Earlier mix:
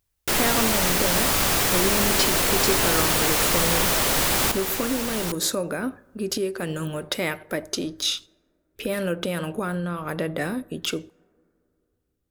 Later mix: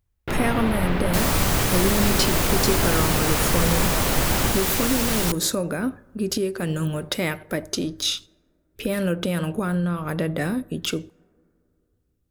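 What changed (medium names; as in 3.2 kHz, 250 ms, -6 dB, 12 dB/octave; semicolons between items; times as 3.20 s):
first sound: add distance through air 480 m; second sound +4.5 dB; master: add tone controls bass +7 dB, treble +1 dB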